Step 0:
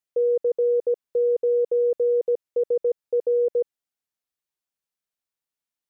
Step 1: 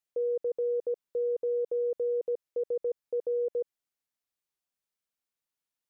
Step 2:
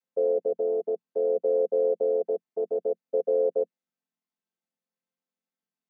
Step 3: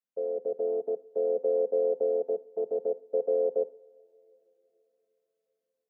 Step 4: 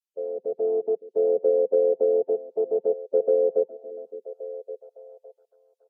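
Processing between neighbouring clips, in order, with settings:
limiter -24 dBFS, peak gain reduction 7 dB; gain -1.5 dB
chord vocoder major triad, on F3; gain +6 dB
AGC gain up to 5.5 dB; on a send at -15.5 dB: reverb, pre-delay 3 ms; on the sum: gain -7.5 dB
per-bin expansion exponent 2; treble ducked by the level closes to 800 Hz, closed at -24 dBFS; delay with a stepping band-pass 0.561 s, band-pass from 310 Hz, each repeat 0.7 oct, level -11 dB; gain +7 dB

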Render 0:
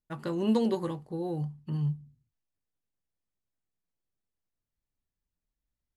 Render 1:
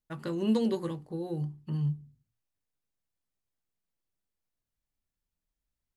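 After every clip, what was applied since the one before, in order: notches 60/120/180/240/300/360/420 Hz; dynamic EQ 820 Hz, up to -6 dB, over -47 dBFS, Q 1.4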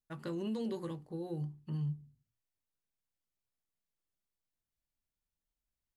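limiter -25 dBFS, peak gain reduction 8 dB; gain -5 dB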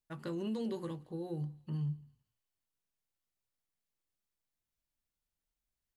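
thinning echo 0.169 s, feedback 57%, high-pass 920 Hz, level -22.5 dB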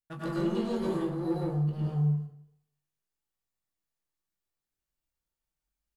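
sample leveller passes 2; doubler 21 ms -8 dB; plate-style reverb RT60 0.74 s, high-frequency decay 0.55×, pre-delay 85 ms, DRR -5.5 dB; gain -3 dB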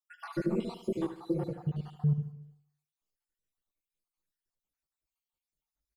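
random spectral dropouts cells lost 62%; on a send: feedback echo 75 ms, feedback 47%, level -12 dB

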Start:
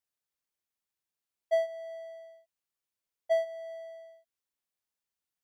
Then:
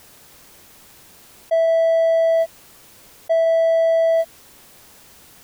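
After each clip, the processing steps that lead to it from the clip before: tilt shelf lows +4 dB, about 840 Hz; fast leveller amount 100%; gain +6 dB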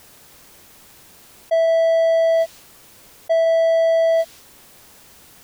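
dynamic EQ 4300 Hz, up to +6 dB, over -45 dBFS, Q 0.72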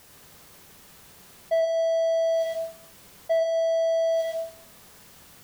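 reverb RT60 0.50 s, pre-delay 85 ms, DRR 0.5 dB; gain -5.5 dB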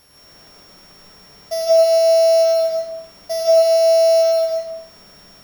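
sample sorter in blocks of 8 samples; digital reverb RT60 0.93 s, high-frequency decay 0.4×, pre-delay 0.12 s, DRR -4.5 dB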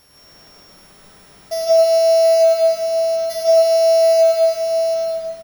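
echo 0.725 s -5 dB

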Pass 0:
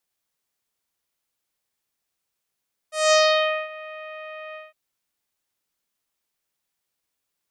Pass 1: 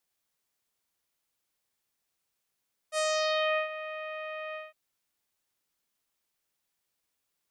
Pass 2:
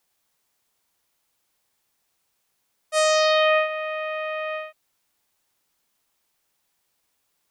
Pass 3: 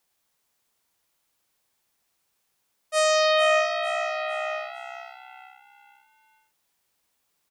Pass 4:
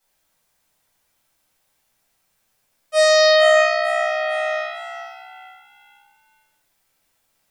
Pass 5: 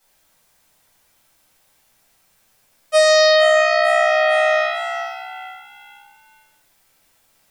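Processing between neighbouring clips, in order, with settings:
limiter -18.5 dBFS, peak gain reduction 11.5 dB; gain -1 dB
bell 860 Hz +3 dB 0.77 oct; gain +8.5 dB
frequency-shifting echo 0.45 s, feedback 42%, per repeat +64 Hz, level -10 dB; gain -1.5 dB
reverb RT60 0.55 s, pre-delay 4 ms, DRR -9 dB; gain -3 dB
compressor 5:1, threshold -20 dBFS, peak gain reduction 8.5 dB; gain +8 dB

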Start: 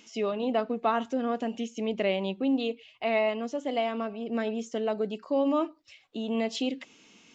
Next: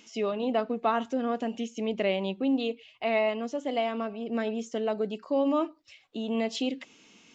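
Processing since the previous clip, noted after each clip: nothing audible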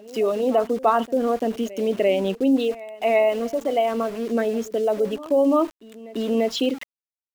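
formant sharpening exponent 1.5; sample gate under -43 dBFS; reverse echo 0.342 s -19 dB; gain +7.5 dB

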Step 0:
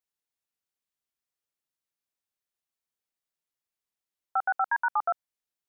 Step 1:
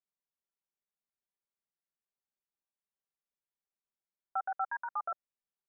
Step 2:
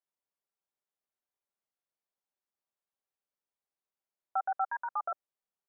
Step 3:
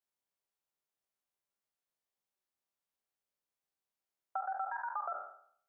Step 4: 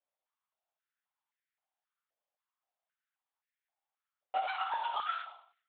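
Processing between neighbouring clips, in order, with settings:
LPF 1600 Hz 12 dB/oct; dynamic EQ 900 Hz, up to -6 dB, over -42 dBFS, Q 3.3; comb 5.1 ms, depth 65%; gain -7 dB
bell 680 Hz +10.5 dB 2.8 oct; gain -6.5 dB
spectral trails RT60 0.60 s; compressor, threshold -32 dBFS, peak gain reduction 6.5 dB; gain -2 dB
half-waves squared off; LPC vocoder at 8 kHz whisper; stepped high-pass 3.8 Hz 560–1800 Hz; gain -3.5 dB

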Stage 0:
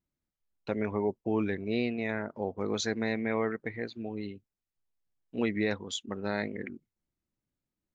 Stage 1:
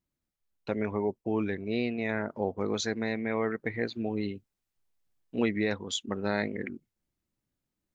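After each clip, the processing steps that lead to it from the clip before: vocal rider within 4 dB 0.5 s; gain +1.5 dB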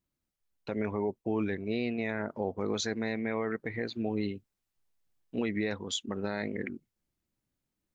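limiter -20.5 dBFS, peak gain reduction 6.5 dB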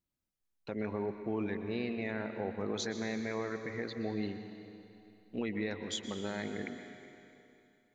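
reverb RT60 2.8 s, pre-delay 0.114 s, DRR 7 dB; gain -4.5 dB

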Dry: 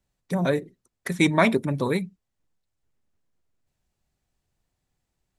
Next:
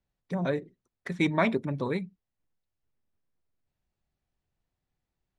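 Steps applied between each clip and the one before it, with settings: Bessel low-pass 3900 Hz, order 2; gain -5.5 dB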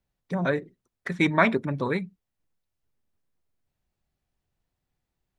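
dynamic EQ 1500 Hz, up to +7 dB, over -46 dBFS, Q 1.4; gain +2.5 dB

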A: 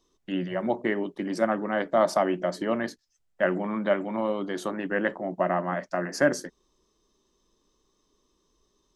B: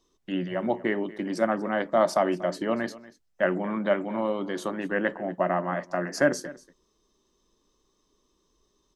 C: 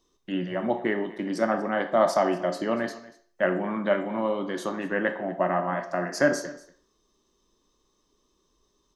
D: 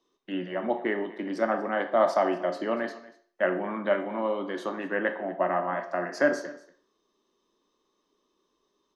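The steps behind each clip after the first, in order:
echo 0.238 s -19 dB
on a send at -7 dB: HPF 470 Hz 12 dB/oct + reverb RT60 0.50 s, pre-delay 12 ms
three-band isolator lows -19 dB, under 200 Hz, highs -12 dB, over 4300 Hz; gain -1 dB

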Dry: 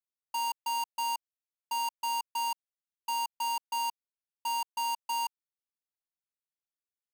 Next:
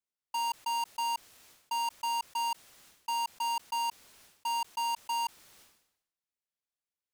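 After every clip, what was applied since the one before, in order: high shelf 12000 Hz -7.5 dB; sustainer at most 75 dB/s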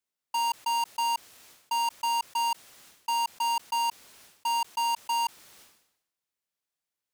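low shelf 65 Hz -8.5 dB; gain +4.5 dB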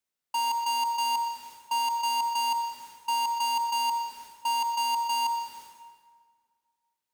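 reverb RT60 1.9 s, pre-delay 58 ms, DRR 7.5 dB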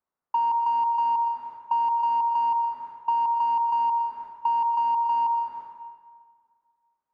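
synth low-pass 1100 Hz, resonance Q 2.1; compressor, threshold -24 dBFS, peak gain reduction 5.5 dB; gain +2.5 dB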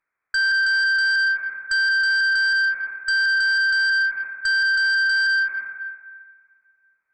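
inverted band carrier 2500 Hz; added harmonics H 4 -27 dB, 5 -8 dB, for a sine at -15 dBFS

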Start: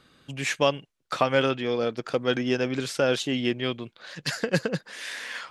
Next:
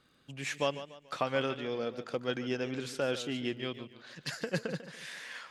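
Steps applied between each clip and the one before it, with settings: crackle 20/s -49 dBFS; warbling echo 0.144 s, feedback 38%, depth 96 cents, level -13 dB; gain -9 dB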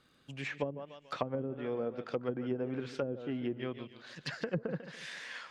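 treble ducked by the level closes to 360 Hz, closed at -27.5 dBFS

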